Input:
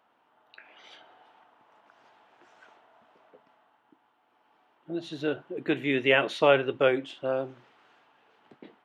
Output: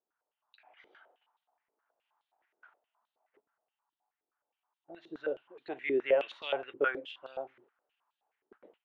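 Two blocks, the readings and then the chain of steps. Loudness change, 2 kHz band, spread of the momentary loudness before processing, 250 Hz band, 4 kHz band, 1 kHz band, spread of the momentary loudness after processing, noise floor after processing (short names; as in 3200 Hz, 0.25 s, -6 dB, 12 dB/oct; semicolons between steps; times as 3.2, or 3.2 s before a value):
-7.5 dB, -8.5 dB, 14 LU, -12.0 dB, -11.0 dB, -9.0 dB, 15 LU, under -85 dBFS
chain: gate -55 dBFS, range -14 dB; stepped band-pass 9.5 Hz 390–3900 Hz; gain +1.5 dB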